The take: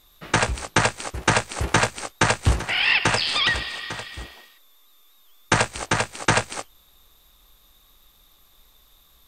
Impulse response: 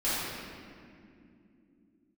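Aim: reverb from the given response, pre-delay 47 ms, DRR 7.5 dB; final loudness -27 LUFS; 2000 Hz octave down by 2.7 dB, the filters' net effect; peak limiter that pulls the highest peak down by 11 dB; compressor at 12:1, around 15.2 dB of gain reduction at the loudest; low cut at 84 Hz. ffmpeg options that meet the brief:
-filter_complex "[0:a]highpass=84,equalizer=f=2k:t=o:g=-3.5,acompressor=threshold=-31dB:ratio=12,alimiter=level_in=2dB:limit=-24dB:level=0:latency=1,volume=-2dB,asplit=2[a][b];[1:a]atrim=start_sample=2205,adelay=47[c];[b][c]afir=irnorm=-1:irlink=0,volume=-18.5dB[d];[a][d]amix=inputs=2:normalize=0,volume=10.5dB"

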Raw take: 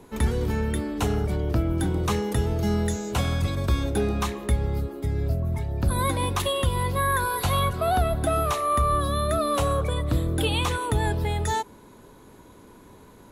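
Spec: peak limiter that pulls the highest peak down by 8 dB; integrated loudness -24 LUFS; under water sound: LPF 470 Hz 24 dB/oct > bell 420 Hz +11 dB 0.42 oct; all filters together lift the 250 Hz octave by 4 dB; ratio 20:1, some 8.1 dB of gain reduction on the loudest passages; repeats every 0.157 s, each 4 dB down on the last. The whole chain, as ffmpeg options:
-af "equalizer=f=250:t=o:g=3.5,acompressor=threshold=-25dB:ratio=20,alimiter=limit=-22dB:level=0:latency=1,lowpass=f=470:w=0.5412,lowpass=f=470:w=1.3066,equalizer=f=420:t=o:w=0.42:g=11,aecho=1:1:157|314|471|628|785|942|1099|1256|1413:0.631|0.398|0.25|0.158|0.0994|0.0626|0.0394|0.0249|0.0157,volume=4dB"

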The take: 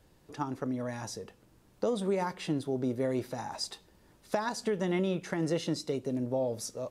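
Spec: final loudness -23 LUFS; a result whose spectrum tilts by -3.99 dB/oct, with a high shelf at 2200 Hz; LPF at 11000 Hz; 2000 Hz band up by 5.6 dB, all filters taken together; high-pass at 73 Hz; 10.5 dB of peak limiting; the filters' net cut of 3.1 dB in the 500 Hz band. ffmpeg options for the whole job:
-af "highpass=73,lowpass=11k,equalizer=f=500:t=o:g=-4.5,equalizer=f=2k:t=o:g=3,highshelf=f=2.2k:g=8,volume=12.5dB,alimiter=limit=-12dB:level=0:latency=1"

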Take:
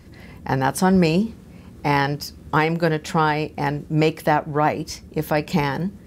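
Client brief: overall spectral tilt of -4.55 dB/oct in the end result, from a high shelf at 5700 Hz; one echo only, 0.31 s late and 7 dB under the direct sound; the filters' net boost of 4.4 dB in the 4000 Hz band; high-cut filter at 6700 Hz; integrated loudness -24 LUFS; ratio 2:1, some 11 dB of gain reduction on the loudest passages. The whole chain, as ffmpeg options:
-af "lowpass=6.7k,equalizer=f=4k:t=o:g=5.5,highshelf=f=5.7k:g=3,acompressor=threshold=-34dB:ratio=2,aecho=1:1:310:0.447,volume=6.5dB"

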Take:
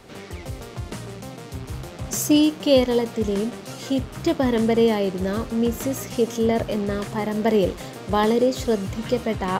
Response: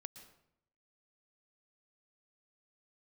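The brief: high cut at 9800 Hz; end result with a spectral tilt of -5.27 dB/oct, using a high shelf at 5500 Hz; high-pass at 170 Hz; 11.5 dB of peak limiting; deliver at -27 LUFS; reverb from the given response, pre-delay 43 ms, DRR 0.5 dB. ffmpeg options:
-filter_complex "[0:a]highpass=170,lowpass=9.8k,highshelf=f=5.5k:g=-8,alimiter=limit=-17.5dB:level=0:latency=1,asplit=2[a][b];[1:a]atrim=start_sample=2205,adelay=43[c];[b][c]afir=irnorm=-1:irlink=0,volume=5dB[d];[a][d]amix=inputs=2:normalize=0,volume=-2dB"

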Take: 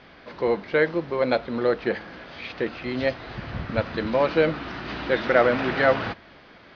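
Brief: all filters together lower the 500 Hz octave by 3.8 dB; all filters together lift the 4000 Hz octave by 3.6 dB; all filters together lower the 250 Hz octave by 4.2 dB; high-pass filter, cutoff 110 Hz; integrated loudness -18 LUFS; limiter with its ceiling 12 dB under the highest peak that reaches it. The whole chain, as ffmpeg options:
-af "highpass=110,equalizer=f=250:t=o:g=-4,equalizer=f=500:t=o:g=-3.5,equalizer=f=4k:t=o:g=4.5,volume=12.5dB,alimiter=limit=-5.5dB:level=0:latency=1"

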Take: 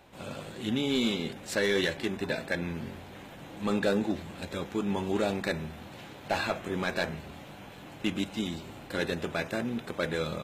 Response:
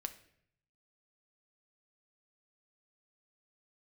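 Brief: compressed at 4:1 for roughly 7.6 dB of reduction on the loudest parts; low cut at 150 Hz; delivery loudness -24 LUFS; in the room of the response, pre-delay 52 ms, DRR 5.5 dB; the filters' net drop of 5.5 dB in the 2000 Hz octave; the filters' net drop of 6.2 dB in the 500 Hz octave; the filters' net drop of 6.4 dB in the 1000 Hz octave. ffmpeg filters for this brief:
-filter_complex "[0:a]highpass=150,equalizer=f=500:t=o:g=-6.5,equalizer=f=1k:t=o:g=-5,equalizer=f=2k:t=o:g=-5,acompressor=threshold=-36dB:ratio=4,asplit=2[a][b];[1:a]atrim=start_sample=2205,adelay=52[c];[b][c]afir=irnorm=-1:irlink=0,volume=-3.5dB[d];[a][d]amix=inputs=2:normalize=0,volume=16.5dB"

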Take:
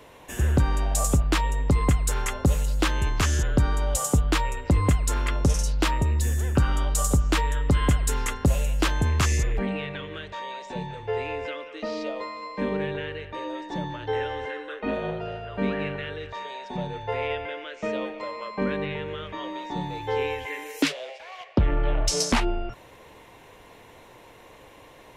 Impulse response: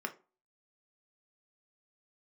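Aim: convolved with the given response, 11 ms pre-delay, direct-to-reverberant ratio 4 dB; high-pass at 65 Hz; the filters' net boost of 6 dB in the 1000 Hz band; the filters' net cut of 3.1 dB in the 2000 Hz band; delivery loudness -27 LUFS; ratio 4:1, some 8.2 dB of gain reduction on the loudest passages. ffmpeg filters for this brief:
-filter_complex "[0:a]highpass=65,equalizer=f=1k:t=o:g=8.5,equalizer=f=2k:t=o:g=-7,acompressor=threshold=-26dB:ratio=4,asplit=2[a][b];[1:a]atrim=start_sample=2205,adelay=11[c];[b][c]afir=irnorm=-1:irlink=0,volume=-6.5dB[d];[a][d]amix=inputs=2:normalize=0,volume=3.5dB"

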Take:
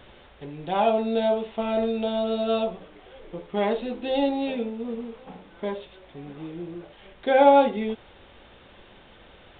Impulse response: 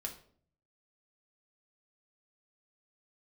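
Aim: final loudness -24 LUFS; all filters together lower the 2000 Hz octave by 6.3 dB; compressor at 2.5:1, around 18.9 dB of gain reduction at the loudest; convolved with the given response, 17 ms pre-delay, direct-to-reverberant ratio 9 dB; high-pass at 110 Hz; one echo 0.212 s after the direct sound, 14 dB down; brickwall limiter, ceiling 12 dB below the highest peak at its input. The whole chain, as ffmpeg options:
-filter_complex "[0:a]highpass=110,equalizer=f=2k:t=o:g=-9,acompressor=threshold=-43dB:ratio=2.5,alimiter=level_in=13dB:limit=-24dB:level=0:latency=1,volume=-13dB,aecho=1:1:212:0.2,asplit=2[a][b];[1:a]atrim=start_sample=2205,adelay=17[c];[b][c]afir=irnorm=-1:irlink=0,volume=-8dB[d];[a][d]amix=inputs=2:normalize=0,volume=21.5dB"

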